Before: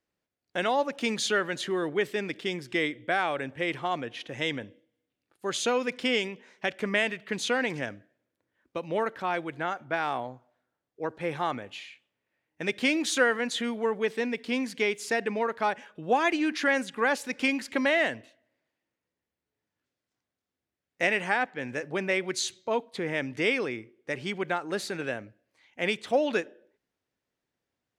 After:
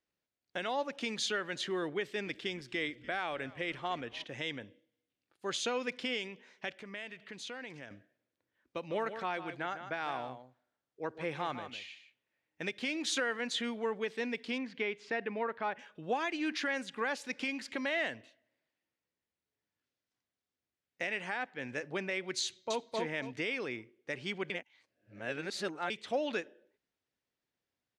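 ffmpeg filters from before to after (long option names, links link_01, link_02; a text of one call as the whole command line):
ffmpeg -i in.wav -filter_complex "[0:a]asettb=1/sr,asplit=3[link_01][link_02][link_03];[link_01]atrim=end=1.974[link_04];[link_02]atrim=start=1.97:end=4.24,asetpts=PTS-STARTPTS,afade=type=in:duration=0.004:curve=qsin,afade=type=out:start_time=2.266:duration=0.004:curve=qsin,asplit=5[link_05][link_06][link_07][link_08][link_09];[link_06]adelay=291,afreqshift=-95,volume=-23dB[link_10];[link_07]adelay=582,afreqshift=-190,volume=-27.7dB[link_11];[link_08]adelay=873,afreqshift=-285,volume=-32.5dB[link_12];[link_09]adelay=1164,afreqshift=-380,volume=-37.2dB[link_13];[link_05][link_10][link_11][link_12][link_13]amix=inputs=5:normalize=0,atrim=end_sample=100107[link_14];[link_03]atrim=start=4.236[link_15];[link_04][link_14]acrossfade=duration=0.004:curve1=hsin:curve2=qsin[link_16];[link_16][link_15]acrossfade=duration=0.004:curve1=qsin:curve2=hsin,asettb=1/sr,asplit=3[link_17][link_18][link_19];[link_17]atrim=end=6.724[link_20];[link_18]atrim=start=6.72:end=7.91,asetpts=PTS-STARTPTS,afade=type=in:duration=0.004:curve=qsin,afade=type=out:start_time=1.186:duration=0.004:curve=qsin,acompressor=threshold=-45dB:ratio=2:attack=3.2:release=140:knee=1:detection=peak[link_21];[link_19]atrim=start=7.906[link_22];[link_20][link_21]acrossfade=duration=0.004:curve1=hsin:curve2=qsin[link_23];[link_23][link_22]acrossfade=duration=0.004:curve1=qsin:curve2=hsin,asplit=3[link_24][link_25][link_26];[link_24]afade=type=out:start_time=8.79:duration=0.02[link_27];[link_25]aecho=1:1:154:0.299,afade=type=in:start_time=8.79:duration=0.02,afade=type=out:start_time=12.67:duration=0.02[link_28];[link_26]afade=type=in:start_time=12.67:duration=0.02[link_29];[link_27][link_28][link_29]amix=inputs=3:normalize=0,asettb=1/sr,asplit=3[link_30][link_31][link_32];[link_30]atrim=end=14.584[link_33];[link_31]atrim=start=14.58:end=15.79,asetpts=PTS-STARTPTS,afade=type=in:duration=0.004:curve=qsin,afade=type=out:start_time=1.206:duration=0.004:curve=qsin,lowpass=2700[link_34];[link_32]atrim=start=15.786[link_35];[link_33][link_34]acrossfade=duration=0.004:curve1=hsin:curve2=qsin[link_36];[link_36][link_35]acrossfade=duration=0.004:curve1=qsin:curve2=hsin,asplit=2[link_37][link_38];[link_38]afade=type=in:start_time=22.44:duration=0.01,afade=type=out:start_time=22.89:duration=0.01,aecho=0:1:260|520|780|1040:0.841395|0.210349|0.0525872|0.0131468[link_39];[link_37][link_39]amix=inputs=2:normalize=0,asplit=3[link_40][link_41][link_42];[link_40]atrim=end=24.502[link_43];[link_41]atrim=start=24.498:end=25.902,asetpts=PTS-STARTPTS,areverse[link_44];[link_42]atrim=start=25.898[link_45];[link_43][link_44]acrossfade=duration=0.004:curve1=hsin:curve2=hsin[link_46];[link_46][link_45]acrossfade=duration=0.004:curve1=hsin:curve2=hsin,lowpass=4100,aemphasis=mode=production:type=75fm,alimiter=limit=-18dB:level=0:latency=1:release=245,volume=-5.5dB" out.wav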